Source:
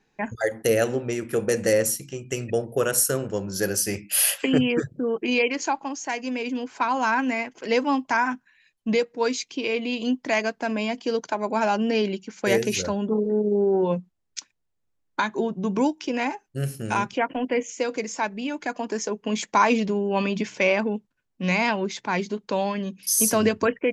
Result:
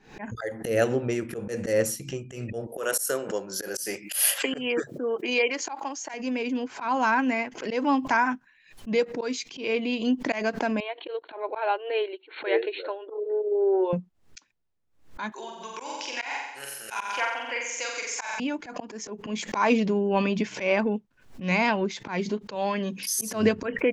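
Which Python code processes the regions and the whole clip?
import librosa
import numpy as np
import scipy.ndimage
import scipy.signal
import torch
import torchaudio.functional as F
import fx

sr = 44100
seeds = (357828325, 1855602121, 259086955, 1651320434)

y = fx.chain(x, sr, fx.highpass(hz=390.0, slope=12),
    fx.high_shelf(hz=8400.0, db=11.0),
    fx.notch(hz=2600.0, q=24.0), at=(2.67, 6.14))
y = fx.chain(y, sr, fx.brickwall_bandpass(low_hz=300.0, high_hz=4400.0),
    fx.upward_expand(threshold_db=-43.0, expansion=1.5), at=(10.8, 13.93))
y = fx.chain(y, sr, fx.highpass(hz=1100.0, slope=12),
    fx.high_shelf(hz=4800.0, db=9.0),
    fx.room_flutter(wall_m=7.7, rt60_s=0.93), at=(15.32, 18.4))
y = fx.chain(y, sr, fx.low_shelf(hz=200.0, db=-11.0),
    fx.env_flatten(amount_pct=50), at=(22.55, 23.1))
y = fx.high_shelf(y, sr, hz=5800.0, db=-8.5)
y = fx.auto_swell(y, sr, attack_ms=135.0)
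y = fx.pre_swell(y, sr, db_per_s=120.0)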